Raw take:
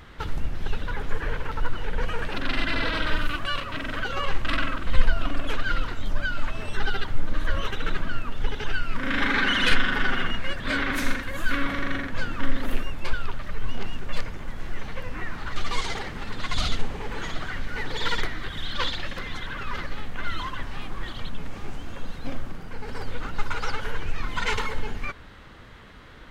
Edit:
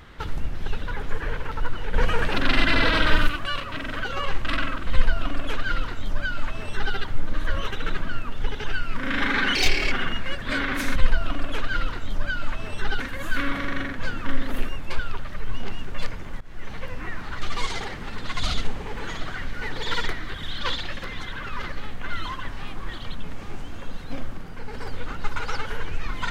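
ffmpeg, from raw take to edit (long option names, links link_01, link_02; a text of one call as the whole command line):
ffmpeg -i in.wav -filter_complex "[0:a]asplit=8[link_01][link_02][link_03][link_04][link_05][link_06][link_07][link_08];[link_01]atrim=end=1.942[link_09];[link_02]atrim=start=1.938:end=3.292,asetpts=PTS-STARTPTS,volume=6dB[link_10];[link_03]atrim=start=3.288:end=9.554[link_11];[link_04]atrim=start=9.55:end=10.1,asetpts=PTS-STARTPTS,asetrate=66150,aresample=44100[link_12];[link_05]atrim=start=10.096:end=11.142[link_13];[link_06]atrim=start=4.908:end=6.952[link_14];[link_07]atrim=start=11.138:end=14.55,asetpts=PTS-STARTPTS,afade=type=out:start_time=3.408:duration=0.004:curve=hsin:silence=0.11885[link_15];[link_08]atrim=start=14.55,asetpts=PTS-STARTPTS,afade=type=in:duration=0.33:silence=0.11885[link_16];[link_09][link_10]acrossfade=duration=0.004:curve1=hsin:curve2=hsin[link_17];[link_17][link_11]acrossfade=duration=0.004:curve1=hsin:curve2=hsin[link_18];[link_18][link_12]acrossfade=duration=0.004:curve1=hsin:curve2=hsin[link_19];[link_19][link_13]acrossfade=duration=0.004:curve1=hsin:curve2=hsin[link_20];[link_20][link_14]acrossfade=duration=0.004:curve1=hsin:curve2=hsin[link_21];[link_15][link_16]concat=n=2:v=0:a=1[link_22];[link_21][link_22]acrossfade=duration=0.004:curve1=hsin:curve2=hsin" out.wav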